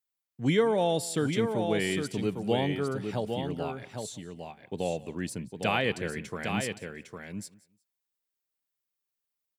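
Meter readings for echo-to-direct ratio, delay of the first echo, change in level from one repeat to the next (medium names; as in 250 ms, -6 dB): -6.0 dB, 180 ms, no regular repeats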